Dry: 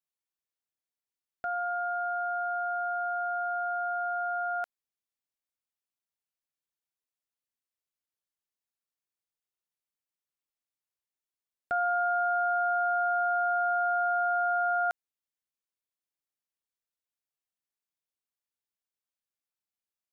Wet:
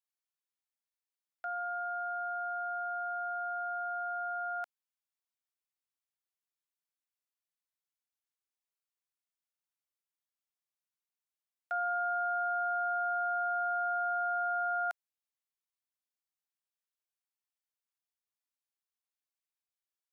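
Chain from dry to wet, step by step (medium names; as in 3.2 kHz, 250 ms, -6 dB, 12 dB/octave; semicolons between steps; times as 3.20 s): high-pass 690 Hz 24 dB/octave; trim -4 dB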